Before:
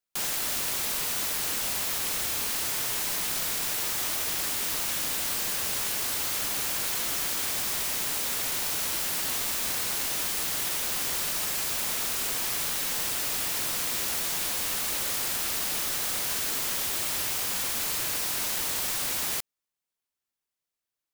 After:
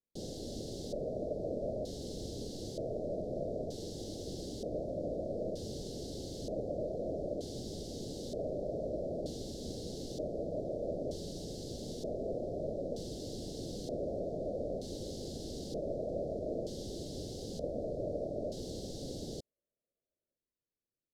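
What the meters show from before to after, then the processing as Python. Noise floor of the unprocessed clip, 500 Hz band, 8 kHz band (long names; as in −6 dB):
below −85 dBFS, +6.5 dB, −24.5 dB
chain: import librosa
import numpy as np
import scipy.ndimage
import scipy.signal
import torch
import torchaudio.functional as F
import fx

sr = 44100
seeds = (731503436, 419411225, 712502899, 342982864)

y = fx.filter_lfo_lowpass(x, sr, shape='square', hz=0.54, low_hz=630.0, high_hz=1900.0, q=6.0)
y = scipy.signal.sosfilt(scipy.signal.cheby2(4, 50, [980.0, 2500.0], 'bandstop', fs=sr, output='sos'), y)
y = F.gain(torch.from_numpy(y), 3.0).numpy()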